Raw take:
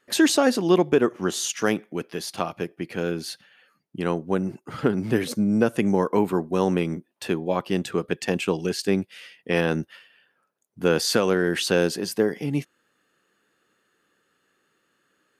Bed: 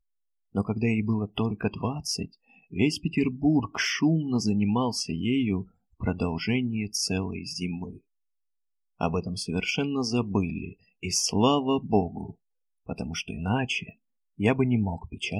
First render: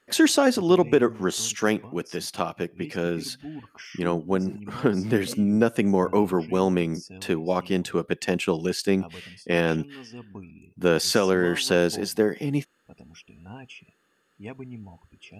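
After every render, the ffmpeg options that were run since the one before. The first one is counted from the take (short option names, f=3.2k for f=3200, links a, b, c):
-filter_complex "[1:a]volume=-16dB[a];[0:a][a]amix=inputs=2:normalize=0"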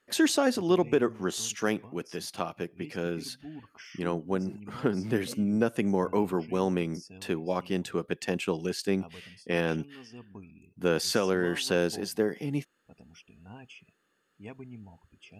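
-af "volume=-5.5dB"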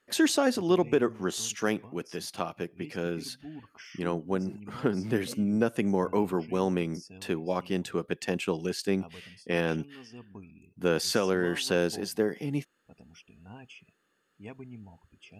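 -af anull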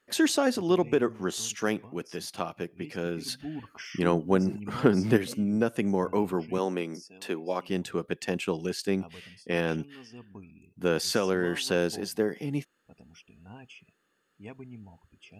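-filter_complex "[0:a]asplit=3[a][b][c];[a]afade=t=out:st=3.27:d=0.02[d];[b]acontrast=55,afade=t=in:st=3.27:d=0.02,afade=t=out:st=5.16:d=0.02[e];[c]afade=t=in:st=5.16:d=0.02[f];[d][e][f]amix=inputs=3:normalize=0,asettb=1/sr,asplit=3[g][h][i];[g]atrim=end=6.584[j];[h]atrim=start=6.58:end=7.69,asetpts=PTS-STARTPTS,afade=t=in:d=0.004:c=qsin,afade=t=out:st=1.106:d=0.004:c=qsin,highpass=260[k];[i]atrim=start=7.686[l];[j][k]acrossfade=d=0.004:c1=hsin:c2=qsin[m];[m][l]acrossfade=d=0.004:c1=qsin:c2=hsin"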